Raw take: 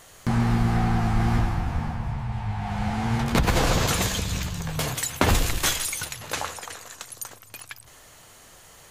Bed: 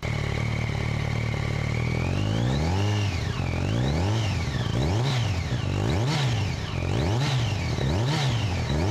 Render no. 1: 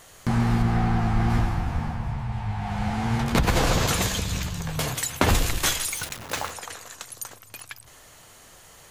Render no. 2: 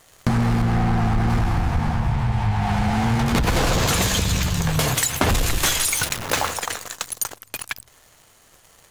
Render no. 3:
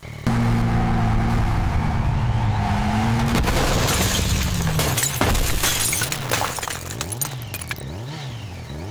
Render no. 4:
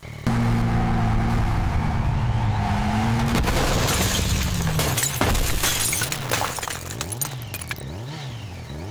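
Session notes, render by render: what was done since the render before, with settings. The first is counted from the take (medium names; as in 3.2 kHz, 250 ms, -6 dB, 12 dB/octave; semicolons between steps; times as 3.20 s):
0.62–1.30 s: treble shelf 5.7 kHz -7 dB; 5.92–6.51 s: send-on-delta sampling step -33 dBFS
waveshaping leveller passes 3; compression, threshold -17 dBFS, peak gain reduction 8.5 dB
add bed -7 dB
trim -1.5 dB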